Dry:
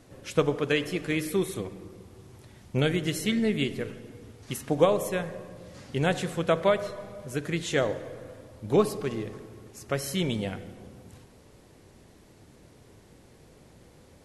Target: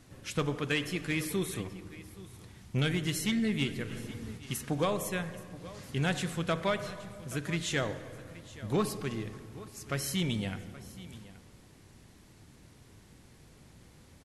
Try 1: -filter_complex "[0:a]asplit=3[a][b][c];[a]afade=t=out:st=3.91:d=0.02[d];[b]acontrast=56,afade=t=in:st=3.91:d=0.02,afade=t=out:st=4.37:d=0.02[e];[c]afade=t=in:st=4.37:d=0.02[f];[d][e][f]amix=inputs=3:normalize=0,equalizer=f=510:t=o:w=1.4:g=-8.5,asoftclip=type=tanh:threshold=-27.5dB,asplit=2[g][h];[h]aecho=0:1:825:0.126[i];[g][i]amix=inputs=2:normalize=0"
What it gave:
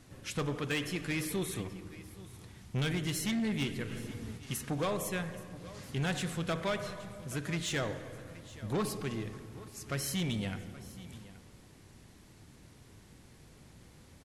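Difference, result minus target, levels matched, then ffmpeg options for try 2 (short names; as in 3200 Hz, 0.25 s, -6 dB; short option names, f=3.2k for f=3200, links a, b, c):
soft clip: distortion +8 dB
-filter_complex "[0:a]asplit=3[a][b][c];[a]afade=t=out:st=3.91:d=0.02[d];[b]acontrast=56,afade=t=in:st=3.91:d=0.02,afade=t=out:st=4.37:d=0.02[e];[c]afade=t=in:st=4.37:d=0.02[f];[d][e][f]amix=inputs=3:normalize=0,equalizer=f=510:t=o:w=1.4:g=-8.5,asoftclip=type=tanh:threshold=-20.5dB,asplit=2[g][h];[h]aecho=0:1:825:0.126[i];[g][i]amix=inputs=2:normalize=0"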